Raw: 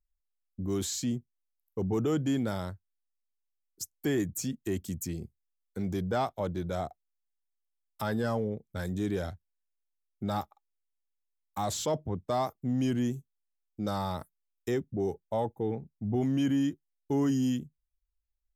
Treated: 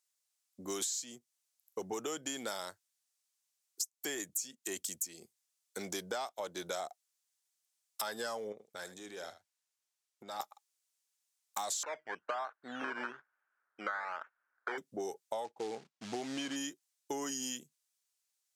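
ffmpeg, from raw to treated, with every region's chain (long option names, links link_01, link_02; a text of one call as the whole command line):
ffmpeg -i in.wav -filter_complex "[0:a]asettb=1/sr,asplit=3[link_01][link_02][link_03];[link_01]atrim=end=8.524[link_04];[link_02]atrim=start=8.52:end=10.4,asetpts=PTS-STARTPTS,afade=type=in:duration=0.004:curve=qsin,afade=type=out:start_time=1.876:duration=0.004:curve=qsin,highshelf=frequency=4900:gain=-7.5,acompressor=threshold=-41dB:ratio=5:attack=3.2:release=140:knee=1:detection=peak,aecho=1:1:77:0.211,atrim=end_sample=82908[link_05];[link_03]atrim=start=10.396[link_06];[link_04][link_05]acrossfade=duration=0.004:curve1=hsin:curve2=qsin[link_07];[link_07][link_06]acrossfade=duration=0.004:curve1=qsin:curve2=hsin,asettb=1/sr,asplit=3[link_08][link_09][link_10];[link_08]atrim=end=11.834[link_11];[link_09]atrim=start=11.83:end=14.78,asetpts=PTS-STARTPTS,afade=type=in:duration=0.004:curve=qsin,afade=type=out:start_time=2.946:duration=0.004:curve=qsin,equalizer=frequency=88:width=0.41:gain=-13.5,acrusher=samples=13:mix=1:aa=0.000001:lfo=1:lforange=7.8:lforate=1.1,lowpass=frequency=1500:width_type=q:width=6.6[link_12];[link_10]atrim=start=14.776[link_13];[link_11][link_12]acrossfade=duration=0.004:curve1=hsin:curve2=qsin[link_14];[link_14][link_13]acrossfade=duration=0.004:curve1=qsin:curve2=hsin,asettb=1/sr,asplit=3[link_15][link_16][link_17];[link_15]atrim=end=15.444[link_18];[link_16]atrim=start=15.44:end=16.56,asetpts=PTS-STARTPTS,afade=type=in:duration=0.004:curve=qsin,afade=type=out:start_time=1.116:duration=0.004:curve=qsin,acrusher=bits=5:mode=log:mix=0:aa=0.000001,adynamicsmooth=sensitivity=3:basefreq=3500[link_19];[link_17]atrim=start=16.556[link_20];[link_18][link_19]acrossfade=duration=0.004:curve1=hsin:curve2=qsin[link_21];[link_21][link_20]acrossfade=duration=0.004:curve1=qsin:curve2=hsin,highpass=580,equalizer=frequency=7200:width=0.58:gain=12.5,acompressor=threshold=-40dB:ratio=10,volume=5dB" out.wav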